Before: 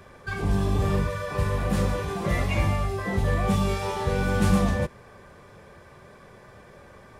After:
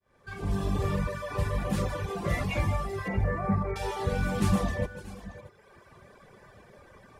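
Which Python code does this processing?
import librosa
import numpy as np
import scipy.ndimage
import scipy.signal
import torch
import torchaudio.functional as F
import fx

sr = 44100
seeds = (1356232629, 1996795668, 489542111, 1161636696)

y = fx.fade_in_head(x, sr, length_s=0.67)
y = fx.steep_lowpass(y, sr, hz=2200.0, slope=72, at=(3.08, 3.76))
y = fx.echo_multitap(y, sr, ms=(155, 548, 631), db=(-9.0, -16.0, -15.5))
y = fx.dereverb_blind(y, sr, rt60_s=1.1)
y = y * 10.0 ** (-2.5 / 20.0)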